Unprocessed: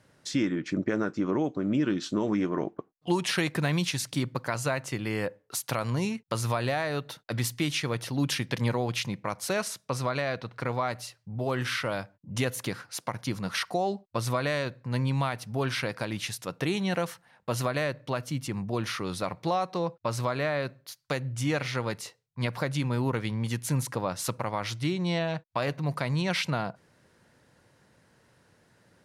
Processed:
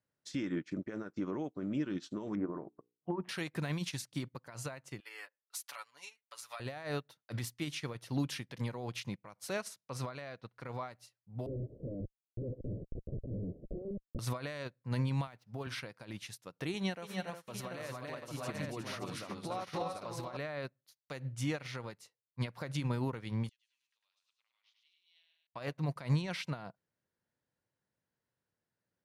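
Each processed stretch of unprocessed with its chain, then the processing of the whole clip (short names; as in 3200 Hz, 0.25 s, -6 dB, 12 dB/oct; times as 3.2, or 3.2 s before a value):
2.35–3.29 LPF 1400 Hz 24 dB/oct + notches 60/120/180/240/300/360/420/480 Hz
5–6.6 HPF 1200 Hz + comb 7 ms, depth 81%
11.46–14.19 transient shaper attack -6 dB, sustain +11 dB + Schmitt trigger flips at -31.5 dBFS + steep low-pass 590 Hz 72 dB/oct
15.27–15.67 median filter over 5 samples + HPF 70 Hz 24 dB/oct
16.74–20.37 HPF 150 Hz 6 dB/oct + tapped delay 0.282/0.289/0.361/0.738/0.798 s -4.5/-10/-9.5/-8/-7 dB
23.49–25.47 de-esser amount 85% + ladder band-pass 3600 Hz, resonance 50% + feedback echo 0.102 s, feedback 48%, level -3 dB
whole clip: limiter -23.5 dBFS; upward expander 2.5:1, over -46 dBFS; gain +1.5 dB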